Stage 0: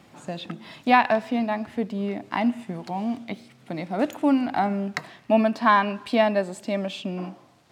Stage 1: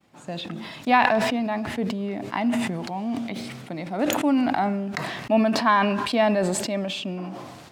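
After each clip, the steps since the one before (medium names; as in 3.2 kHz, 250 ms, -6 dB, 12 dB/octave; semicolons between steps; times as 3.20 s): expander -47 dBFS; decay stretcher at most 33 dB/s; trim -1.5 dB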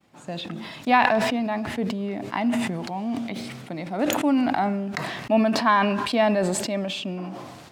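no audible change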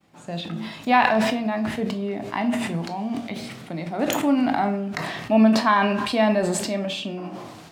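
reverberation RT60 0.40 s, pre-delay 16 ms, DRR 7.5 dB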